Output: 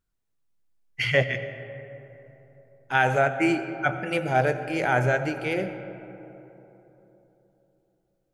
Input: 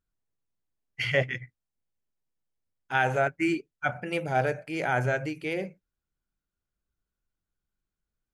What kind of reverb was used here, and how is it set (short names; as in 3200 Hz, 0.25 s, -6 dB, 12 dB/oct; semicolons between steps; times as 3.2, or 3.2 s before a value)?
digital reverb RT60 3.6 s, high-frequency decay 0.35×, pre-delay 50 ms, DRR 10.5 dB; gain +3.5 dB